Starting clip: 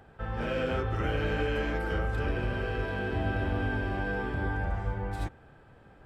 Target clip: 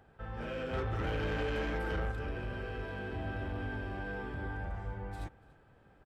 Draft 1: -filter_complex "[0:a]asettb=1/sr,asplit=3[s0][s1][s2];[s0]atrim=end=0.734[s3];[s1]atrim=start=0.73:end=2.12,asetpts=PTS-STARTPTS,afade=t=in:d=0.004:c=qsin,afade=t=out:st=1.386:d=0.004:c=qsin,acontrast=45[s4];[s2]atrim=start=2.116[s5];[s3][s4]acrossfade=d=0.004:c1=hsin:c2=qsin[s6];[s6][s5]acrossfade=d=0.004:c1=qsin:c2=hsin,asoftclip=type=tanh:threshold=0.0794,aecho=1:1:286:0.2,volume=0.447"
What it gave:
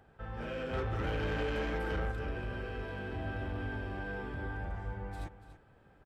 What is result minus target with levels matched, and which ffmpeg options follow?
echo-to-direct +10.5 dB
-filter_complex "[0:a]asettb=1/sr,asplit=3[s0][s1][s2];[s0]atrim=end=0.734[s3];[s1]atrim=start=0.73:end=2.12,asetpts=PTS-STARTPTS,afade=t=in:d=0.004:c=qsin,afade=t=out:st=1.386:d=0.004:c=qsin,acontrast=45[s4];[s2]atrim=start=2.116[s5];[s3][s4]acrossfade=d=0.004:c1=hsin:c2=qsin[s6];[s6][s5]acrossfade=d=0.004:c1=qsin:c2=hsin,asoftclip=type=tanh:threshold=0.0794,aecho=1:1:286:0.0596,volume=0.447"

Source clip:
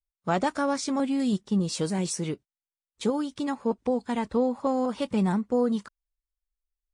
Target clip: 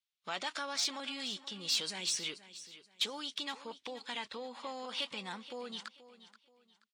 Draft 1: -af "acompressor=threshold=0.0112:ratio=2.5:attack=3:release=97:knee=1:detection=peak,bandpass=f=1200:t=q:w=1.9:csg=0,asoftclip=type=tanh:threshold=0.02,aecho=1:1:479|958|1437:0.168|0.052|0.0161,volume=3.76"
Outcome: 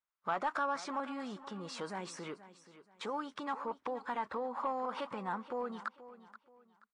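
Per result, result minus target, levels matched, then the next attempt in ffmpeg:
4 kHz band -14.5 dB; compression: peak gain reduction +5 dB
-af "acompressor=threshold=0.0112:ratio=2.5:attack=3:release=97:knee=1:detection=peak,bandpass=f=3400:t=q:w=1.9:csg=0,asoftclip=type=tanh:threshold=0.02,aecho=1:1:479|958|1437:0.168|0.052|0.0161,volume=3.76"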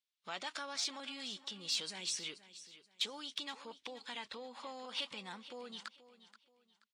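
compression: peak gain reduction +5 dB
-af "acompressor=threshold=0.0282:ratio=2.5:attack=3:release=97:knee=1:detection=peak,bandpass=f=3400:t=q:w=1.9:csg=0,asoftclip=type=tanh:threshold=0.02,aecho=1:1:479|958|1437:0.168|0.052|0.0161,volume=3.76"

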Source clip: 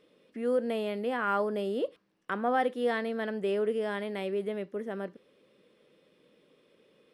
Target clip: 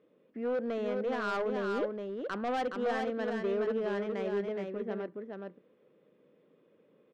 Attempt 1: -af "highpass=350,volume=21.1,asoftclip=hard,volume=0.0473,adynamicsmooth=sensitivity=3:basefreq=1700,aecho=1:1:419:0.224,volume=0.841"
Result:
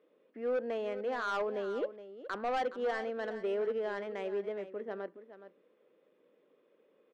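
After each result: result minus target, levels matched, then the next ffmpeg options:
125 Hz band -8.5 dB; echo-to-direct -8.5 dB
-af "highpass=93,volume=21.1,asoftclip=hard,volume=0.0473,adynamicsmooth=sensitivity=3:basefreq=1700,aecho=1:1:419:0.224,volume=0.841"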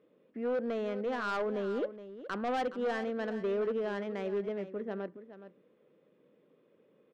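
echo-to-direct -8.5 dB
-af "highpass=93,volume=21.1,asoftclip=hard,volume=0.0473,adynamicsmooth=sensitivity=3:basefreq=1700,aecho=1:1:419:0.596,volume=0.841"

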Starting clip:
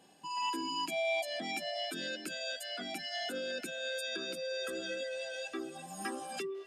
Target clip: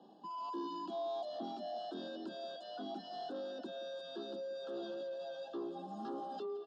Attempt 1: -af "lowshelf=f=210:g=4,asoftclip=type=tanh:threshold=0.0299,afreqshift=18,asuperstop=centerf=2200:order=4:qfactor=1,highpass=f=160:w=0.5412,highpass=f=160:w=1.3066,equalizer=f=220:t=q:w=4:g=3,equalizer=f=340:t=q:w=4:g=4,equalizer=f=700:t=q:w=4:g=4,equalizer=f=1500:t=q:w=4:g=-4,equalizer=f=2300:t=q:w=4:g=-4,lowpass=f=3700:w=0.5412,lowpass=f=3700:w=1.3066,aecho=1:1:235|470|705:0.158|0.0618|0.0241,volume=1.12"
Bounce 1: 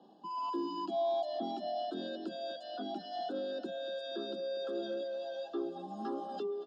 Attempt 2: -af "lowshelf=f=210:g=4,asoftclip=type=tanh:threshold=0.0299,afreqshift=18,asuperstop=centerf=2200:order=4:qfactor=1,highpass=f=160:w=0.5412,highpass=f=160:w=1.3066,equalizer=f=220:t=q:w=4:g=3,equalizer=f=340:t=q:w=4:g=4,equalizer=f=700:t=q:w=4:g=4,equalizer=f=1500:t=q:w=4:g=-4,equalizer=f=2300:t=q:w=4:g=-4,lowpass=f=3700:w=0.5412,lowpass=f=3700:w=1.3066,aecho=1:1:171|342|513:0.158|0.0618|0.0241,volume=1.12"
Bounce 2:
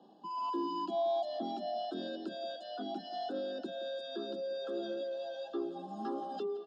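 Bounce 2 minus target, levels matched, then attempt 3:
saturation: distortion -9 dB
-af "lowshelf=f=210:g=4,asoftclip=type=tanh:threshold=0.00891,afreqshift=18,asuperstop=centerf=2200:order=4:qfactor=1,highpass=f=160:w=0.5412,highpass=f=160:w=1.3066,equalizer=f=220:t=q:w=4:g=3,equalizer=f=340:t=q:w=4:g=4,equalizer=f=700:t=q:w=4:g=4,equalizer=f=1500:t=q:w=4:g=-4,equalizer=f=2300:t=q:w=4:g=-4,lowpass=f=3700:w=0.5412,lowpass=f=3700:w=1.3066,aecho=1:1:171|342|513:0.158|0.0618|0.0241,volume=1.12"

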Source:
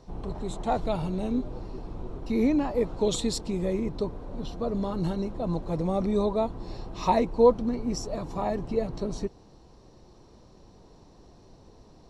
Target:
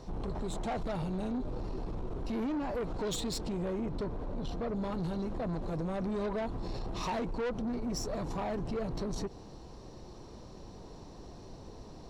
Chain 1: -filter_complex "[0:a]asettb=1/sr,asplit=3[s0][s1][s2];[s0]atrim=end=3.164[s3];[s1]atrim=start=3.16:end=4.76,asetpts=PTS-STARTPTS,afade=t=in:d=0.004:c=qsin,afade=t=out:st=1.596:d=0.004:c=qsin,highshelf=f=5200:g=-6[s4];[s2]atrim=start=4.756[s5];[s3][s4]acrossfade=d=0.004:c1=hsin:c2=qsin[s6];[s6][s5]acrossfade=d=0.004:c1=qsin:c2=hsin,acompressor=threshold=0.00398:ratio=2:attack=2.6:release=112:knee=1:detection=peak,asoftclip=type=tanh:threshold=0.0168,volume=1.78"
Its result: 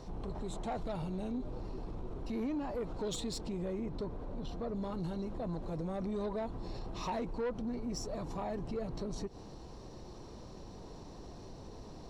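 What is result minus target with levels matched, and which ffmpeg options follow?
compression: peak gain reduction +6 dB
-filter_complex "[0:a]asettb=1/sr,asplit=3[s0][s1][s2];[s0]atrim=end=3.164[s3];[s1]atrim=start=3.16:end=4.76,asetpts=PTS-STARTPTS,afade=t=in:d=0.004:c=qsin,afade=t=out:st=1.596:d=0.004:c=qsin,highshelf=f=5200:g=-6[s4];[s2]atrim=start=4.756[s5];[s3][s4]acrossfade=d=0.004:c1=hsin:c2=qsin[s6];[s6][s5]acrossfade=d=0.004:c1=qsin:c2=hsin,acompressor=threshold=0.015:ratio=2:attack=2.6:release=112:knee=1:detection=peak,asoftclip=type=tanh:threshold=0.0168,volume=1.78"

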